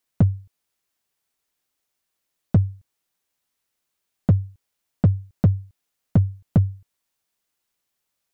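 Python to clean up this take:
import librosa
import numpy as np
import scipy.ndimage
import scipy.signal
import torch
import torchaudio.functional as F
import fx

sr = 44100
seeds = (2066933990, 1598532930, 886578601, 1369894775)

y = fx.fix_declip(x, sr, threshold_db=-10.0)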